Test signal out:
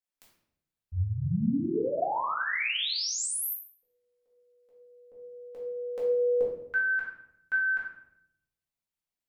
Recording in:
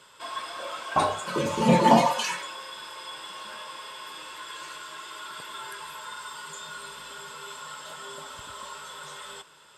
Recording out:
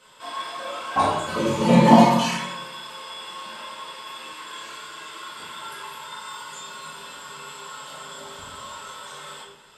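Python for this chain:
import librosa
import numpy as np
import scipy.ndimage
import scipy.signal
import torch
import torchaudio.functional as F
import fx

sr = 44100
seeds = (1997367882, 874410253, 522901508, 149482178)

y = fx.room_shoebox(x, sr, seeds[0], volume_m3=190.0, walls='mixed', distance_m=2.0)
y = y * librosa.db_to_amplitude(-4.0)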